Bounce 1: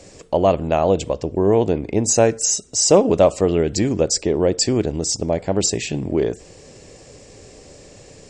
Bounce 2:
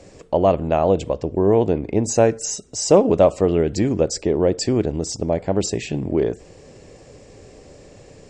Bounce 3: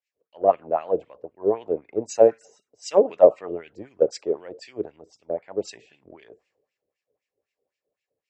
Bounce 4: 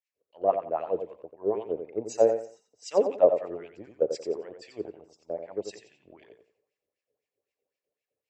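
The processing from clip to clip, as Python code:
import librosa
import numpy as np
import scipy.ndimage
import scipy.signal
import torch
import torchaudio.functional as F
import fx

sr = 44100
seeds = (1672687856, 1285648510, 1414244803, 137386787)

y1 = fx.high_shelf(x, sr, hz=3200.0, db=-9.0)
y2 = fx.filter_lfo_bandpass(y1, sr, shape='sine', hz=3.9, low_hz=440.0, high_hz=2500.0, q=2.7)
y2 = fx.band_widen(y2, sr, depth_pct=100)
y2 = y2 * 10.0 ** (-2.0 / 20.0)
y3 = fx.echo_feedback(y2, sr, ms=89, feedback_pct=25, wet_db=-8)
y3 = y3 * 10.0 ** (-6.0 / 20.0)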